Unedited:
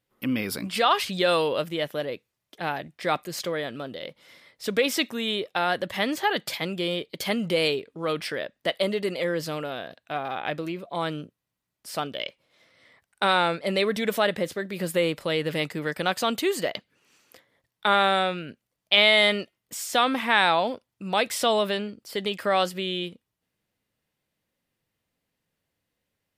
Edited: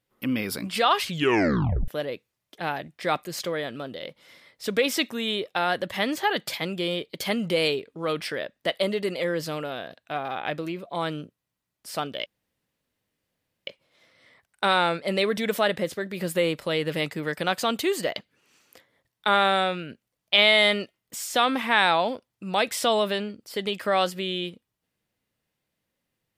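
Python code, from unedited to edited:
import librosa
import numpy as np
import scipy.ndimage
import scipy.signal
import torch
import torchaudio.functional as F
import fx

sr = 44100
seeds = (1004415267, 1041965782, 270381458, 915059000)

y = fx.edit(x, sr, fx.tape_stop(start_s=1.06, length_s=0.82),
    fx.insert_room_tone(at_s=12.26, length_s=1.41), tone=tone)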